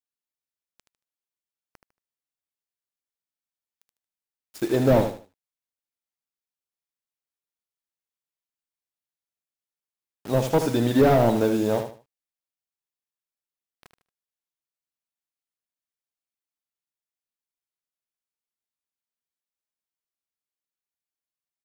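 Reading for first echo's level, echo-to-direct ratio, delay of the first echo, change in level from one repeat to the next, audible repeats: -8.5 dB, -8.0 dB, 76 ms, -11.5 dB, 3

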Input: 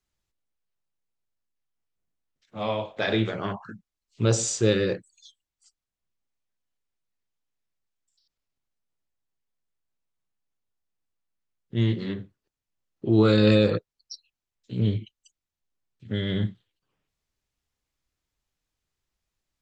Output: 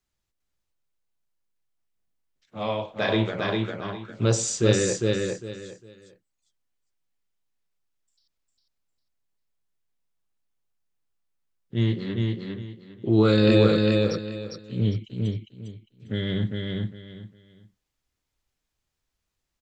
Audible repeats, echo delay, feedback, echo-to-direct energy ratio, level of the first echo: 3, 403 ms, 24%, -2.5 dB, -3.0 dB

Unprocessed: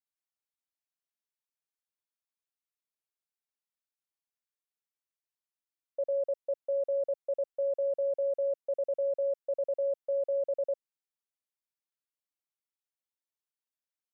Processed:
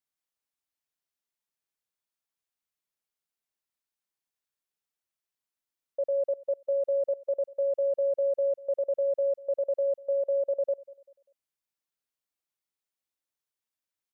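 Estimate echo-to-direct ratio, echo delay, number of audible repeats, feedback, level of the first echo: -21.5 dB, 196 ms, 2, 39%, -22.0 dB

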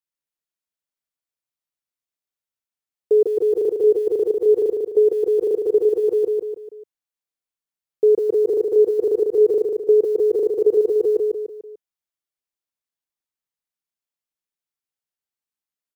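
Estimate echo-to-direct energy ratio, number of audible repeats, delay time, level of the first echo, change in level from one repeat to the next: -3.0 dB, 4, 147 ms, -4.0 dB, -7.0 dB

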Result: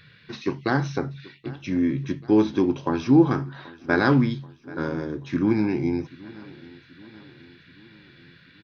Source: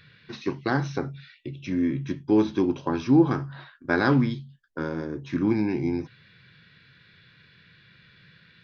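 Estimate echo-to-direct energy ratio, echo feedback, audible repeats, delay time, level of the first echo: -19.5 dB, 56%, 3, 782 ms, -21.0 dB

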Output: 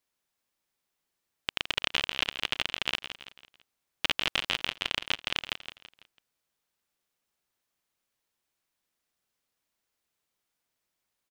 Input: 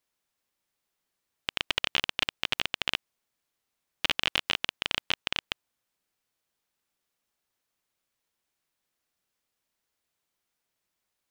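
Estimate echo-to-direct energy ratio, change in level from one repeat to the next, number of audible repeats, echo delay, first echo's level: -9.0 dB, -7.5 dB, 4, 166 ms, -10.0 dB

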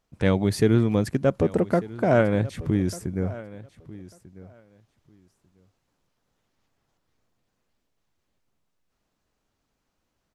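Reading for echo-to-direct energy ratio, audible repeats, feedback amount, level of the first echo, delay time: -18.5 dB, 2, 16%, -18.5 dB, 1194 ms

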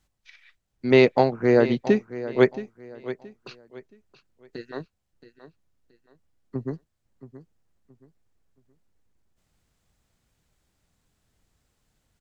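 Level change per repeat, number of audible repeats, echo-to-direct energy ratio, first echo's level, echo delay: -10.5 dB, 2, -14.0 dB, -14.5 dB, 674 ms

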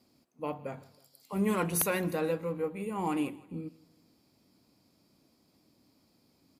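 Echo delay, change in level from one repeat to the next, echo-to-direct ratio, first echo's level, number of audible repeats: 160 ms, -7.0 dB, -21.0 dB, -22.0 dB, 2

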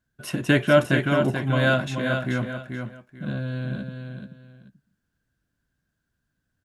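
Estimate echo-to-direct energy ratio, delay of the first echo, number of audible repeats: -6.5 dB, 434 ms, 2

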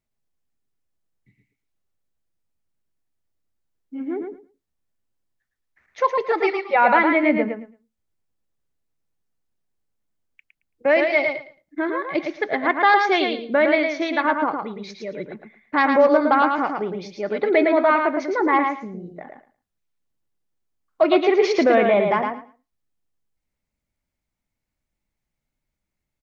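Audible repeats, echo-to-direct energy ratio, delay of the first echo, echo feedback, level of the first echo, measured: 2, -5.0 dB, 111 ms, 17%, -5.0 dB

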